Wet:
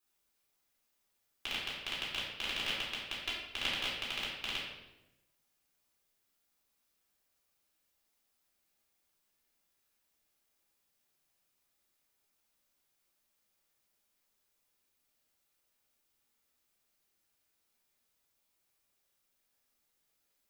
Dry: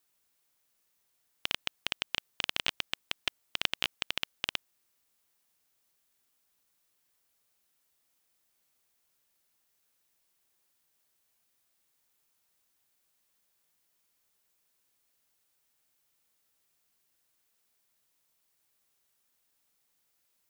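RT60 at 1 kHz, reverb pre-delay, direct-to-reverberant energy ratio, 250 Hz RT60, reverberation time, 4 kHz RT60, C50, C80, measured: 0.85 s, 3 ms, -7.0 dB, 1.2 s, 0.95 s, 0.75 s, 1.0 dB, 4.0 dB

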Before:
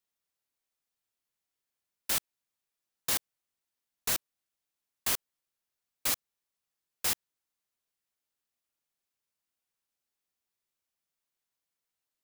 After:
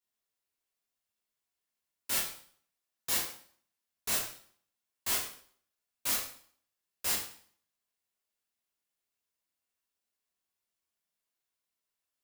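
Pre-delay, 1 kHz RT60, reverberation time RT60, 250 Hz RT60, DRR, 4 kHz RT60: 4 ms, 0.55 s, 0.50 s, 0.60 s, -5.5 dB, 0.50 s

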